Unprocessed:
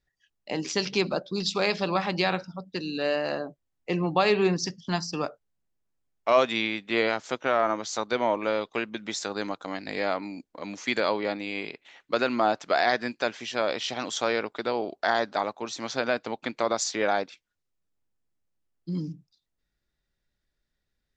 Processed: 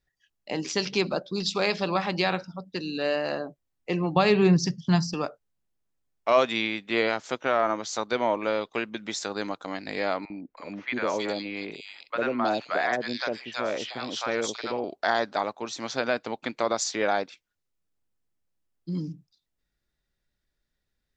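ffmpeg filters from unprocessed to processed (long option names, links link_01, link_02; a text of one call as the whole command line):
ffmpeg -i in.wav -filter_complex "[0:a]asettb=1/sr,asplit=3[link_01][link_02][link_03];[link_01]atrim=end=4.164[link_04];[link_02]atrim=start=4.16:end=5.14,asetpts=PTS-STARTPTS,afade=type=in:duration=0.004:curve=qsin,afade=type=out:start_time=0.976:duration=0.004:curve=qsin,equalizer=frequency=140:width=1.5:gain=14[link_05];[link_03]atrim=start=5.136[link_06];[link_04][link_05]acrossfade=duration=0.004:curve1=hsin:curve2=qsin[link_07];[link_07][link_06]acrossfade=duration=0.004:curve1=qsin:curve2=hsin,asettb=1/sr,asplit=3[link_08][link_09][link_10];[link_08]atrim=end=10.254[link_11];[link_09]atrim=start=10.25:end=14.84,asetpts=PTS-STARTPTS,afade=type=in:duration=0.004:curve=qsin,afade=type=out:start_time=4.586:duration=0.004:curve=qsin,acrossover=split=720|3000[link_12][link_13][link_14];[link_12]adelay=50[link_15];[link_14]adelay=320[link_16];[link_15][link_13][link_16]amix=inputs=3:normalize=0,atrim=end_sample=202419[link_17];[link_10]atrim=start=14.836[link_18];[link_11][link_17]acrossfade=duration=0.004:curve1=hsin:curve2=qsin[link_19];[link_19][link_18]acrossfade=duration=0.004:curve1=qsin:curve2=hsin" out.wav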